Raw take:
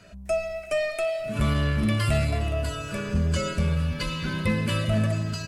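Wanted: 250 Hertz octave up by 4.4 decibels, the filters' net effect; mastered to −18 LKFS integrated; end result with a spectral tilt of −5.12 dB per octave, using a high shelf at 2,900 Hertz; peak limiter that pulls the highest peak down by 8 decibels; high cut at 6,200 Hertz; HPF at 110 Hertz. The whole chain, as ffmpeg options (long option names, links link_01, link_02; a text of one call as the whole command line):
ffmpeg -i in.wav -af "highpass=110,lowpass=6200,equalizer=frequency=250:width_type=o:gain=6.5,highshelf=frequency=2900:gain=5.5,volume=9.5dB,alimiter=limit=-9dB:level=0:latency=1" out.wav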